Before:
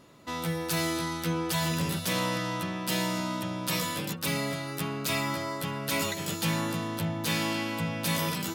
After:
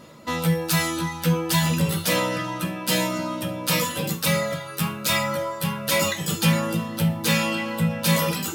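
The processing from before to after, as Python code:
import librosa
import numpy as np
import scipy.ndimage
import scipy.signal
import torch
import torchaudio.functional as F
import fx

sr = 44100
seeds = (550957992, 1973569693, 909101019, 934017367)

p1 = fx.dereverb_blind(x, sr, rt60_s=1.3)
p2 = fx.rev_double_slope(p1, sr, seeds[0], early_s=0.32, late_s=1.8, knee_db=-26, drr_db=2.0)
p3 = 10.0 ** (-29.5 / 20.0) * np.tanh(p2 / 10.0 ** (-29.5 / 20.0))
p4 = p2 + (p3 * librosa.db_to_amplitude(-8.5))
y = p4 * librosa.db_to_amplitude(5.0)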